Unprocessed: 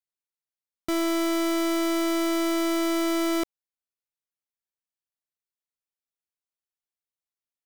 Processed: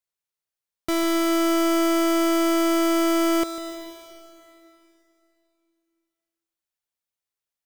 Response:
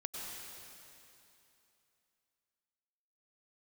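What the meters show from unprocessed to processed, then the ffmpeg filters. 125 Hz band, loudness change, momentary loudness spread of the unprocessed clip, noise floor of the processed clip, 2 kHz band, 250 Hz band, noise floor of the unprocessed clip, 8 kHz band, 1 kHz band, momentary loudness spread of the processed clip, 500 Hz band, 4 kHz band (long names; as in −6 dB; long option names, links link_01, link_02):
can't be measured, +4.0 dB, 5 LU, below −85 dBFS, +3.0 dB, +4.0 dB, below −85 dBFS, +4.0 dB, +5.5 dB, 14 LU, +4.5 dB, +3.0 dB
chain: -filter_complex "[0:a]equalizer=frequency=250:width=3:gain=-6,asplit=2[link_01][link_02];[1:a]atrim=start_sample=2205,adelay=147[link_03];[link_02][link_03]afir=irnorm=-1:irlink=0,volume=-9.5dB[link_04];[link_01][link_04]amix=inputs=2:normalize=0,volume=3.5dB"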